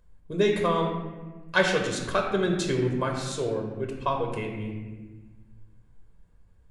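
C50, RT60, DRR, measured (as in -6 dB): 4.0 dB, 1.3 s, 1.0 dB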